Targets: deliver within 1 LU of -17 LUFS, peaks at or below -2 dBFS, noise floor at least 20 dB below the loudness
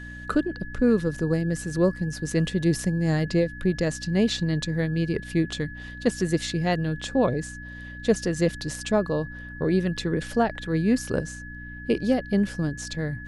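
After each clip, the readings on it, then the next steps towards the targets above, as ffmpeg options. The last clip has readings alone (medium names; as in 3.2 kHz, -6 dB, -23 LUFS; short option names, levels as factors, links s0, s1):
hum 60 Hz; highest harmonic 300 Hz; hum level -39 dBFS; steady tone 1.7 kHz; tone level -40 dBFS; loudness -25.5 LUFS; peak level -8.5 dBFS; loudness target -17.0 LUFS
-> -af "bandreject=f=60:t=h:w=4,bandreject=f=120:t=h:w=4,bandreject=f=180:t=h:w=4,bandreject=f=240:t=h:w=4,bandreject=f=300:t=h:w=4"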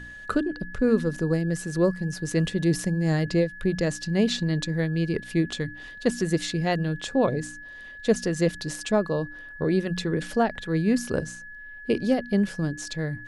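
hum not found; steady tone 1.7 kHz; tone level -40 dBFS
-> -af "bandreject=f=1700:w=30"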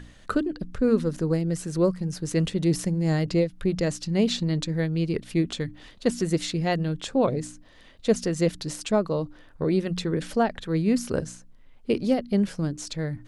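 steady tone not found; loudness -26.0 LUFS; peak level -9.0 dBFS; loudness target -17.0 LUFS
-> -af "volume=2.82,alimiter=limit=0.794:level=0:latency=1"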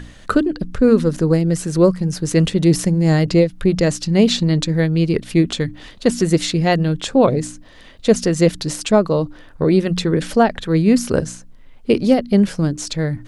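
loudness -17.0 LUFS; peak level -2.0 dBFS; noise floor -42 dBFS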